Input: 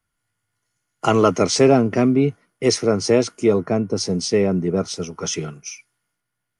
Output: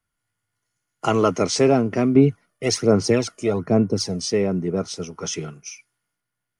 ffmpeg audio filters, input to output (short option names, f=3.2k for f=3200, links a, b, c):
-filter_complex "[0:a]asettb=1/sr,asplit=3[a][b][c];[a]atrim=end=2.154[d];[b]atrim=start=2.15:end=4.32,asetpts=PTS-STARTPTS,afade=t=in:d=0.004:c=qsin,afade=t=out:st=2.166:d=0.004:c=qsin,aphaser=in_gain=1:out_gain=1:delay=1.7:decay=0.55:speed=1.2:type=sinusoidal[e];[c]atrim=start=4.316[f];[d][e]acrossfade=d=0.004:c1=hsin:c2=qsin[g];[g][f]acrossfade=d=0.004:c1=qsin:c2=hsin,volume=-3dB"